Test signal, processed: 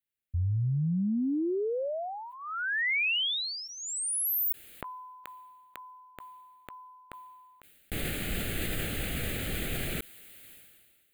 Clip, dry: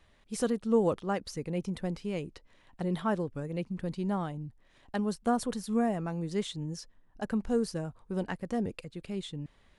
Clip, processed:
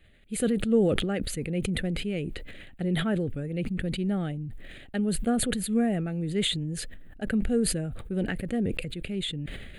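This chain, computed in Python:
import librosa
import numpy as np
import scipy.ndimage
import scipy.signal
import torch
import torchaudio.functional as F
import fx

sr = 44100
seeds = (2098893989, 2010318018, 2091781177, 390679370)

y = fx.fixed_phaser(x, sr, hz=2400.0, stages=4)
y = fx.sustainer(y, sr, db_per_s=33.0)
y = y * librosa.db_to_amplitude(4.5)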